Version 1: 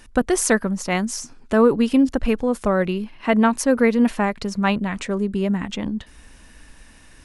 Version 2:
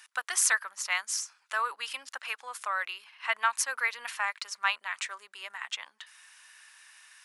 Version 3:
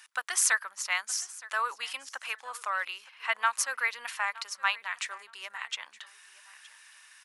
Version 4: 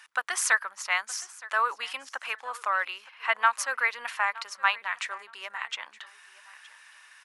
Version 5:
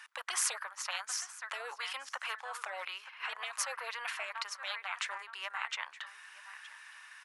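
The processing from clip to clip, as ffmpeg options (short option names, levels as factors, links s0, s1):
-af "highpass=f=1100:w=0.5412,highpass=f=1100:w=1.3066,volume=0.794"
-af "aecho=1:1:918|1836:0.1|0.023"
-af "highshelf=f=3300:g=-11,volume=2"
-af "highpass=1100,tiltshelf=f=1400:g=5.5,afftfilt=real='re*lt(hypot(re,im),0.0631)':imag='im*lt(hypot(re,im),0.0631)':win_size=1024:overlap=0.75,volume=1.41"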